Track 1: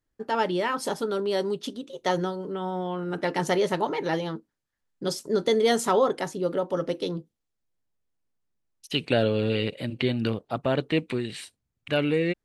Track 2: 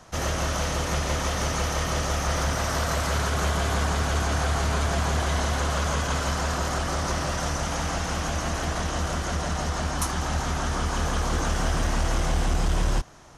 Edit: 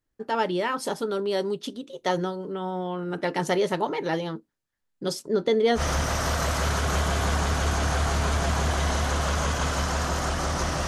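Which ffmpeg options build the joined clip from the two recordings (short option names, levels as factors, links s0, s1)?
-filter_complex "[0:a]asettb=1/sr,asplit=3[s0][s1][s2];[s0]atrim=end=5.224[s3];[s1]atrim=start=5.22:end=5.82,asetpts=PTS-STARTPTS,afade=t=in:d=0.004:c=qsin,afade=t=out:st=0.596:d=0.004:c=qsin,aemphasis=mode=reproduction:type=50fm[s4];[s2]atrim=start=5.816[s5];[s3][s4]acrossfade=d=0.004:c1=hsin:c2=qsin[s6];[s6][s5]acrossfade=d=0.004:c1=qsin:c2=hsin,apad=whole_dur=10.87,atrim=end=10.87,atrim=end=5.82,asetpts=PTS-STARTPTS[s7];[1:a]atrim=start=2.23:end=7.36,asetpts=PTS-STARTPTS[s8];[s7][s8]acrossfade=d=0.08:c1=tri:c2=tri"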